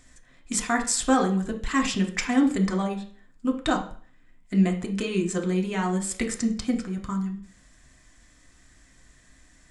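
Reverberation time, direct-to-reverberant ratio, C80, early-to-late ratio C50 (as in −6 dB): 0.45 s, 2.0 dB, 15.0 dB, 10.5 dB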